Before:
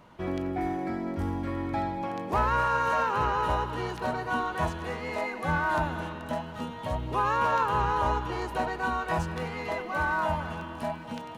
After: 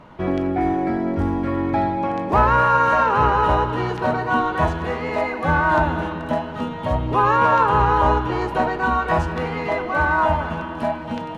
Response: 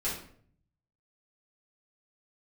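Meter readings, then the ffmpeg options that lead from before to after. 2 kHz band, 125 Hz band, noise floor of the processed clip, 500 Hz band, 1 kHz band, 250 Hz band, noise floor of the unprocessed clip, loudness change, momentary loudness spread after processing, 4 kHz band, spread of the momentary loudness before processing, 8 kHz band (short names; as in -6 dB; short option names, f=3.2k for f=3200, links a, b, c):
+8.5 dB, +9.5 dB, -31 dBFS, +10.0 dB, +9.5 dB, +10.0 dB, -40 dBFS, +9.5 dB, 10 LU, +5.5 dB, 9 LU, n/a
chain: -filter_complex "[0:a]lowpass=f=2.3k:p=1,asplit=2[a][b];[1:a]atrim=start_sample=2205[c];[b][c]afir=irnorm=-1:irlink=0,volume=-15dB[d];[a][d]amix=inputs=2:normalize=0,volume=9dB"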